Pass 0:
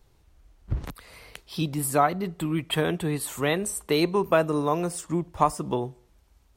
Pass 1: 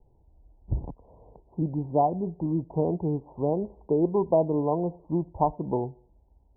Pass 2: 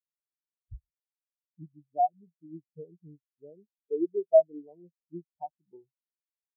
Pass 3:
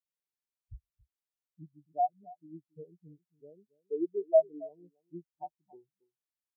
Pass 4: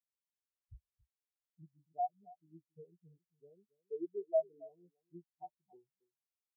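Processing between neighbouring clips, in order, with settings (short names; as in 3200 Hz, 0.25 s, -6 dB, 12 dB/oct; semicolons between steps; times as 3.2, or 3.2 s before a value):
steep low-pass 960 Hz 96 dB/oct
spectral expander 4:1
echo 0.276 s -21 dB; gain -3.5 dB
notch comb 300 Hz; gain -7 dB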